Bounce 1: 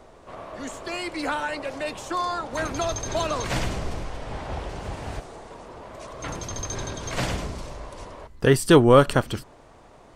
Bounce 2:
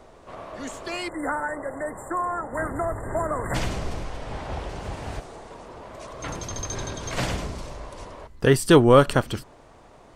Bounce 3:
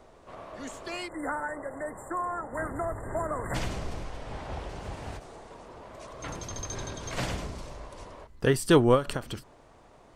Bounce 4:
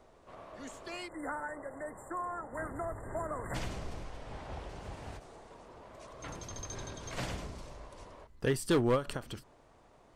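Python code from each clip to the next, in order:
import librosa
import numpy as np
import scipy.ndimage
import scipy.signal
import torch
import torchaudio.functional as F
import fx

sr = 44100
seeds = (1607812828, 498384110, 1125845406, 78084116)

y1 = fx.spec_erase(x, sr, start_s=1.08, length_s=2.47, low_hz=2100.0, high_hz=7100.0)
y2 = fx.end_taper(y1, sr, db_per_s=210.0)
y2 = y2 * librosa.db_to_amplitude(-5.0)
y3 = np.clip(10.0 ** (16.0 / 20.0) * y2, -1.0, 1.0) / 10.0 ** (16.0 / 20.0)
y3 = y3 * librosa.db_to_amplitude(-6.0)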